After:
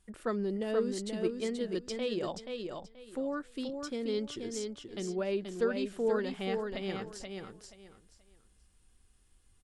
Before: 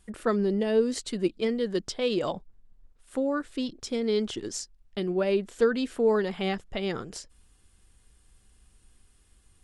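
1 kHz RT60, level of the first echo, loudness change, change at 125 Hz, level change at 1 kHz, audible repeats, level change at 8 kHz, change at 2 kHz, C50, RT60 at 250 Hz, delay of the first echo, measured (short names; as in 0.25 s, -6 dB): none, -5.0 dB, -7.0 dB, -6.5 dB, -6.5 dB, 3, -6.0 dB, -6.0 dB, none, none, 0.48 s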